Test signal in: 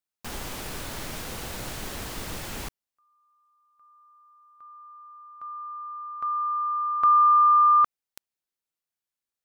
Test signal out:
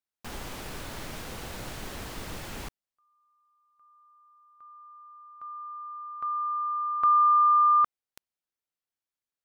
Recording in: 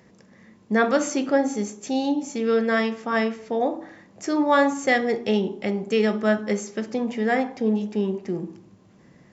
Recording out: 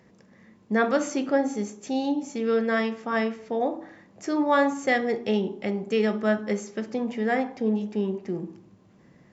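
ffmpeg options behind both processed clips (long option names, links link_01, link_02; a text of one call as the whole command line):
ffmpeg -i in.wav -af "highshelf=frequency=5000:gain=-5,volume=-2.5dB" out.wav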